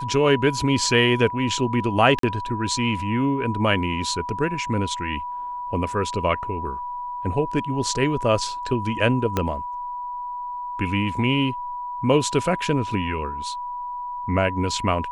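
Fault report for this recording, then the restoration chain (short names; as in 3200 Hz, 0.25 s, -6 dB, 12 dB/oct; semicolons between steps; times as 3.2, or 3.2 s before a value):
tone 980 Hz -28 dBFS
2.19–2.23 gap 43 ms
9.37 pop -8 dBFS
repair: de-click; notch 980 Hz, Q 30; interpolate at 2.19, 43 ms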